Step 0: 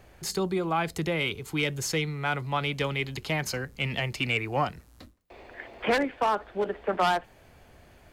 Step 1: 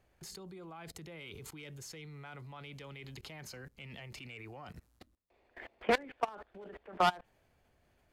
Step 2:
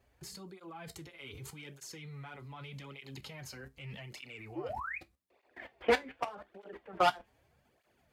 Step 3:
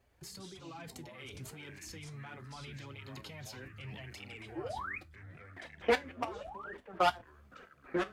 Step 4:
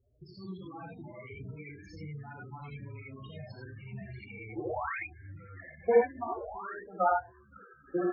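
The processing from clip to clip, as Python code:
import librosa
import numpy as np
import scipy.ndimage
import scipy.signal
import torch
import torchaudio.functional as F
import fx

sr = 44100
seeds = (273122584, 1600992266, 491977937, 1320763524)

y1 = fx.level_steps(x, sr, step_db=23)
y1 = y1 * librosa.db_to_amplitude(-2.0)
y2 = fx.spec_paint(y1, sr, seeds[0], shape='rise', start_s=4.55, length_s=0.43, low_hz=290.0, high_hz=2600.0, level_db=-40.0)
y2 = fx.comb_fb(y2, sr, f0_hz=67.0, decay_s=0.18, harmonics='all', damping=0.0, mix_pct=60)
y2 = fx.flanger_cancel(y2, sr, hz=0.83, depth_ms=6.8)
y2 = y2 * librosa.db_to_amplitude(7.0)
y3 = fx.echo_pitch(y2, sr, ms=89, semitones=-5, count=2, db_per_echo=-6.0)
y3 = y3 * librosa.db_to_amplitude(-1.0)
y4 = fx.env_lowpass(y3, sr, base_hz=2800.0, full_db=-33.0)
y4 = fx.spec_topn(y4, sr, count=8)
y4 = fx.rev_gated(y4, sr, seeds[1], gate_ms=110, shape='rising', drr_db=-2.0)
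y4 = y4 * librosa.db_to_amplitude(1.5)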